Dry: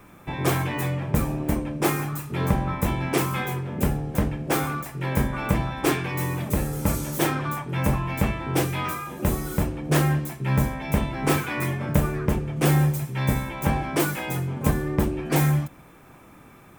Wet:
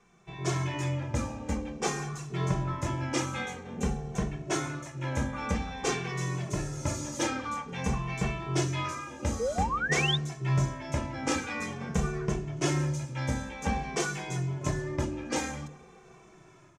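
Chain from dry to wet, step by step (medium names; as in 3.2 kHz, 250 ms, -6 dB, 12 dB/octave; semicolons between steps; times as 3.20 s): feedback echo behind a band-pass 121 ms, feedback 84%, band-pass 580 Hz, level -23 dB; two-slope reverb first 0.63 s, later 2.2 s, DRR 17.5 dB; 9.39–10.17 s: painted sound rise 430–3800 Hz -24 dBFS; four-pole ladder low-pass 7.1 kHz, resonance 60%; hum notches 50/100/150/200/250/300 Hz; level rider gain up to 7 dB; 3.20–5.43 s: band-stop 4.9 kHz, Q 10; endless flanger 2.2 ms -0.5 Hz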